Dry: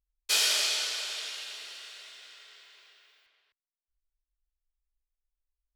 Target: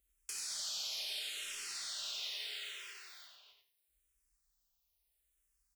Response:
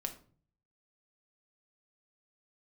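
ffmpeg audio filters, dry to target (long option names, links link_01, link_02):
-filter_complex "[0:a]highpass=53,highshelf=frequency=4100:gain=11.5,alimiter=level_in=4.5dB:limit=-24dB:level=0:latency=1:release=457,volume=-4.5dB,acompressor=threshold=-45dB:ratio=4,asoftclip=type=tanh:threshold=-38.5dB,aecho=1:1:91|182|273:0.473|0.0994|0.0209[link_01];[1:a]atrim=start_sample=2205,atrim=end_sample=3528[link_02];[link_01][link_02]afir=irnorm=-1:irlink=0,asplit=2[link_03][link_04];[link_04]afreqshift=-0.76[link_05];[link_03][link_05]amix=inputs=2:normalize=1,volume=9dB"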